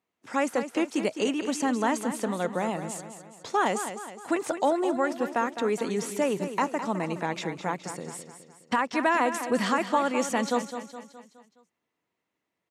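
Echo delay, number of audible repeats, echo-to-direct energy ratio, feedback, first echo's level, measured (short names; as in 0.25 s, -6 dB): 0.209 s, 5, -9.0 dB, 49%, -10.0 dB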